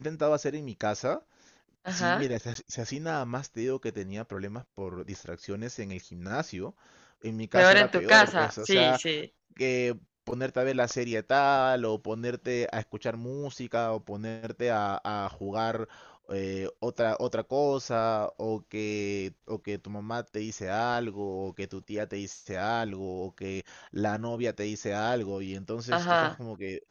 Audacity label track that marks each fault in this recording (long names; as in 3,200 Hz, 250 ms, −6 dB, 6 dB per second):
2.540000	2.550000	drop-out 13 ms